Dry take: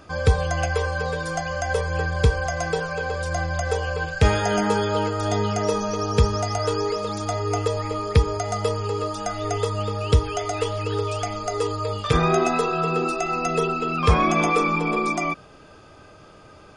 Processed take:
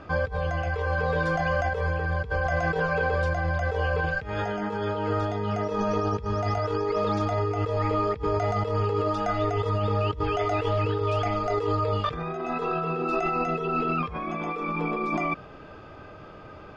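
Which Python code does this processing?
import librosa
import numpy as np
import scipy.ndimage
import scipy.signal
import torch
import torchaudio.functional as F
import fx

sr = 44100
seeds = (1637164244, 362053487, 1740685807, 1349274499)

y = fx.over_compress(x, sr, threshold_db=-27.0, ratio=-1.0)
y = scipy.signal.sosfilt(scipy.signal.butter(2, 2700.0, 'lowpass', fs=sr, output='sos'), y)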